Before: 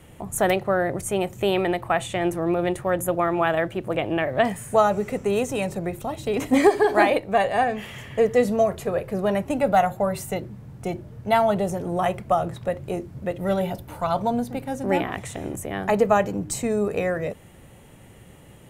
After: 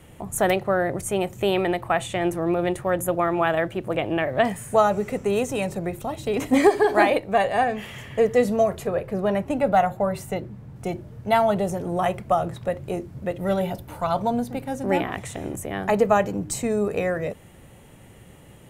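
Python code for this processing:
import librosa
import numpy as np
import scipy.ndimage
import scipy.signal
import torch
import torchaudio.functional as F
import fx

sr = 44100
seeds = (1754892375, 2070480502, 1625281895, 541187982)

y = fx.high_shelf(x, sr, hz=4300.0, db=-6.5, at=(8.87, 10.76))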